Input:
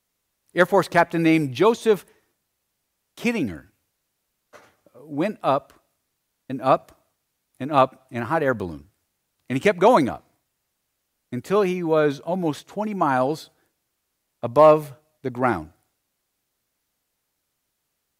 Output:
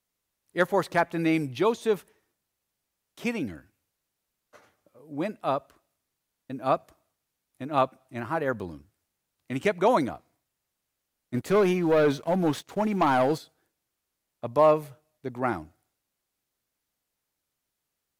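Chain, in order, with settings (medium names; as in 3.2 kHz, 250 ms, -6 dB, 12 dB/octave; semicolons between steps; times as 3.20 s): 11.34–13.38 s: waveshaping leveller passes 2; trim -6.5 dB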